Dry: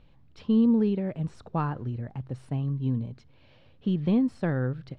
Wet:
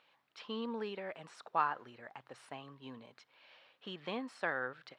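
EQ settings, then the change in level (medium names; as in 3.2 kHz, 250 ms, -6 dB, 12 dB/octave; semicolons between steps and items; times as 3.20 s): high-pass 1.2 kHz 12 dB/octave; treble shelf 2.1 kHz -8.5 dB; +7.5 dB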